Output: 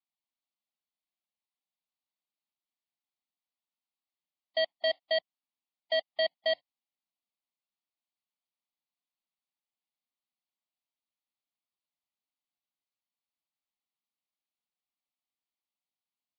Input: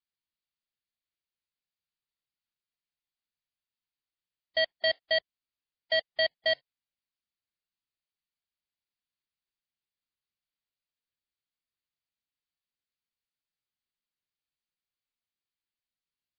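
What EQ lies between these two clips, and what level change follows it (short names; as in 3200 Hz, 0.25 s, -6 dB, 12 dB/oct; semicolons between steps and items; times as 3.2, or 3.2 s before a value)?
speaker cabinet 140–4400 Hz, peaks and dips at 780 Hz +3 dB, 1200 Hz +5 dB, 2000 Hz +6 dB; fixed phaser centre 430 Hz, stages 6; 0.0 dB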